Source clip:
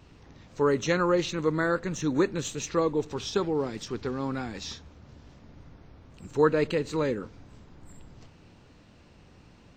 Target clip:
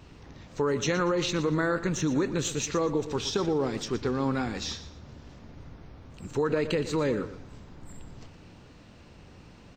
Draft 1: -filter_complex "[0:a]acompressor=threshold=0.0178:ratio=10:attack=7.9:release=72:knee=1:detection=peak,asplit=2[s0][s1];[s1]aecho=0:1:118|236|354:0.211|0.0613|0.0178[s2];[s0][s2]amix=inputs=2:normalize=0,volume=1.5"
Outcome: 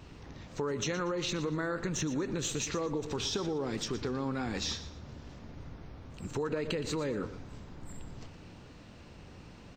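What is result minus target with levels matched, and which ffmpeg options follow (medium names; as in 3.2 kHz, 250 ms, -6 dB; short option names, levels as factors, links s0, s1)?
compression: peak gain reduction +7 dB
-filter_complex "[0:a]acompressor=threshold=0.0447:ratio=10:attack=7.9:release=72:knee=1:detection=peak,asplit=2[s0][s1];[s1]aecho=0:1:118|236|354:0.211|0.0613|0.0178[s2];[s0][s2]amix=inputs=2:normalize=0,volume=1.5"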